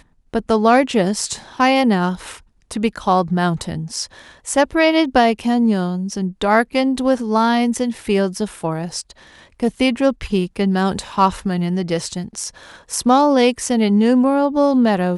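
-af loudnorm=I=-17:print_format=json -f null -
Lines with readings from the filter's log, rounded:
"input_i" : "-17.4",
"input_tp" : "-1.0",
"input_lra" : "3.5",
"input_thresh" : "-27.8",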